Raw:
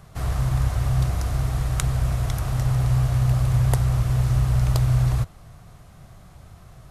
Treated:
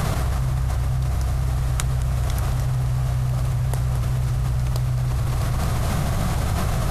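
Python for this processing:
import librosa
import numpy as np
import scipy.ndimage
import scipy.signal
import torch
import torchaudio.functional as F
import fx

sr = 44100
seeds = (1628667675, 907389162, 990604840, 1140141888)

y = fx.echo_feedback(x, sr, ms=219, feedback_pct=49, wet_db=-14)
y = fx.env_flatten(y, sr, amount_pct=100)
y = y * 10.0 ** (-5.5 / 20.0)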